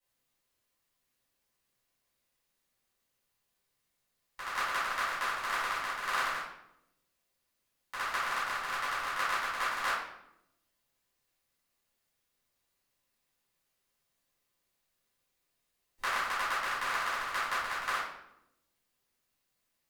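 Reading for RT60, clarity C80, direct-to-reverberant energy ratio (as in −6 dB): 0.85 s, 5.0 dB, −13.5 dB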